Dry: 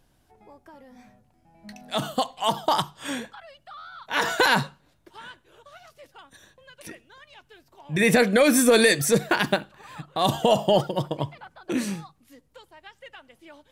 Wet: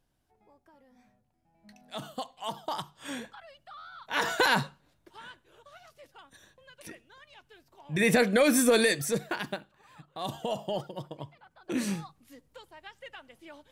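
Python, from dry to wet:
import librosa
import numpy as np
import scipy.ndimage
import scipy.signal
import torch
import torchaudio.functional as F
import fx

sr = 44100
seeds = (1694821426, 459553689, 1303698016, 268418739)

y = fx.gain(x, sr, db=fx.line((2.79, -12.0), (3.29, -4.5), (8.65, -4.5), (9.56, -13.0), (11.42, -13.0), (11.91, -1.0)))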